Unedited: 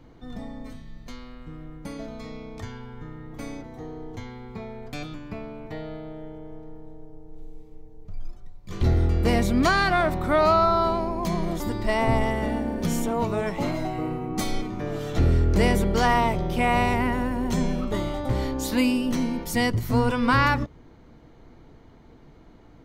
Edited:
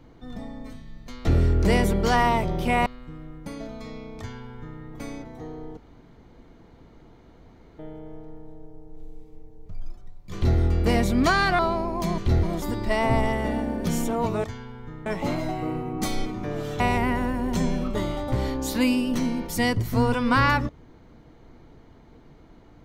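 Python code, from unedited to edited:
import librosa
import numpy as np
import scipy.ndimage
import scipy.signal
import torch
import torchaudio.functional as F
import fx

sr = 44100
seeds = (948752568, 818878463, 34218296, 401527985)

y = fx.edit(x, sr, fx.duplicate(start_s=2.58, length_s=0.62, to_s=13.42),
    fx.room_tone_fill(start_s=4.16, length_s=2.02),
    fx.duplicate(start_s=8.73, length_s=0.25, to_s=11.41),
    fx.cut(start_s=9.98, length_s=0.84),
    fx.move(start_s=15.16, length_s=1.61, to_s=1.25), tone=tone)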